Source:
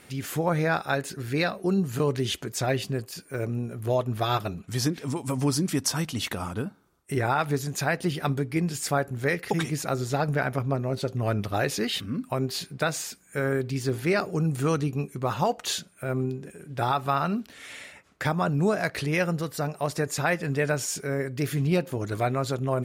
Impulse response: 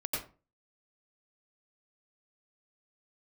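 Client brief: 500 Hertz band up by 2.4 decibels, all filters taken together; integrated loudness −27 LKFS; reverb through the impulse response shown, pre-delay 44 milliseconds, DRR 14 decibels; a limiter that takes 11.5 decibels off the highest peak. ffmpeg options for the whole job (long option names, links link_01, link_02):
-filter_complex "[0:a]equalizer=frequency=500:width_type=o:gain=3,alimiter=limit=-22.5dB:level=0:latency=1,asplit=2[link_01][link_02];[1:a]atrim=start_sample=2205,adelay=44[link_03];[link_02][link_03]afir=irnorm=-1:irlink=0,volume=-18.5dB[link_04];[link_01][link_04]amix=inputs=2:normalize=0,volume=5dB"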